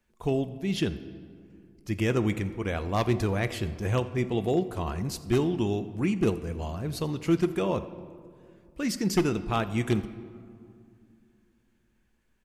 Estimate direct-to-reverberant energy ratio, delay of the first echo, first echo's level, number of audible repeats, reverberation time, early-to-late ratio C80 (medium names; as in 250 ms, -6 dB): 11.5 dB, 86 ms, -22.5 dB, 1, 2.4 s, 14.5 dB